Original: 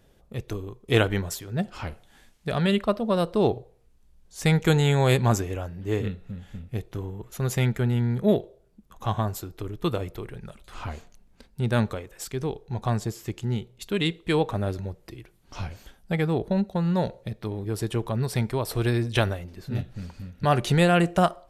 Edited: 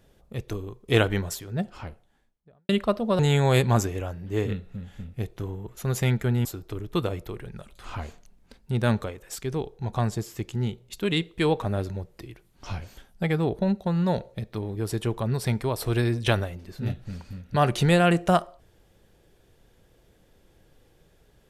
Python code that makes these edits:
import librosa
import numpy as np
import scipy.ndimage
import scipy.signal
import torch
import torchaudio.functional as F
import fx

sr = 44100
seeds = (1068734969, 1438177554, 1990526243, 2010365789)

y = fx.studio_fade_out(x, sr, start_s=1.27, length_s=1.42)
y = fx.edit(y, sr, fx.cut(start_s=3.19, length_s=1.55),
    fx.cut(start_s=8.0, length_s=1.34), tone=tone)